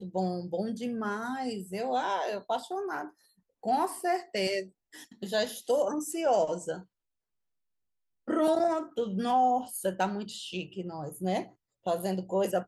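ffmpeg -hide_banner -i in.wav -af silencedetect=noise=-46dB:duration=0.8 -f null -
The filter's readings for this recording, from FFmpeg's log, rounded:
silence_start: 6.82
silence_end: 8.28 | silence_duration: 1.45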